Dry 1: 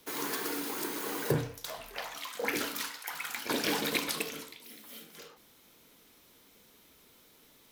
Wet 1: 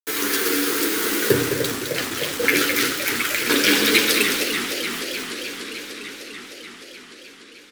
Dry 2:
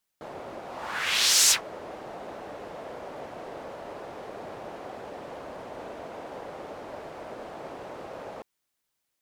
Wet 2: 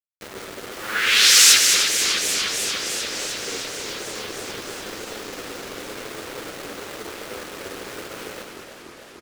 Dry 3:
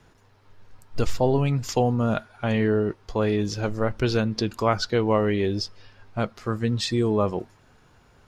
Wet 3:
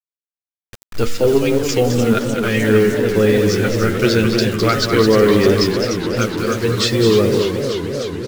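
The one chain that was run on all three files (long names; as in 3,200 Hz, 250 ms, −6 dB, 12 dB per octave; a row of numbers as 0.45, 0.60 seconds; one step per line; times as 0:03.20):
flat-topped bell 790 Hz −13 dB 1.1 octaves
flanger 0.99 Hz, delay 8.8 ms, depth 2 ms, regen +12%
hum removal 79.03 Hz, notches 26
in parallel at −8.5 dB: sine wavefolder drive 6 dB, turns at −10 dBFS
on the sum: bass and treble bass −8 dB, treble −2 dB
dead-zone distortion −51 dBFS
bit reduction 7 bits
on a send: single-tap delay 211 ms −7 dB
on the sum: feedback echo with a swinging delay time 300 ms, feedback 79%, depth 186 cents, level −8.5 dB
normalise the peak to −1.5 dBFS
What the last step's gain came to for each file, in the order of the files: +12.0, +7.0, +8.0 decibels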